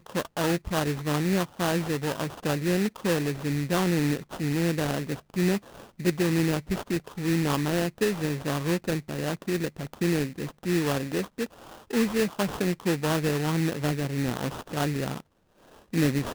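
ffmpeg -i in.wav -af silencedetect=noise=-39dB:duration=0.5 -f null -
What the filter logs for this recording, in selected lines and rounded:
silence_start: 15.20
silence_end: 15.93 | silence_duration: 0.73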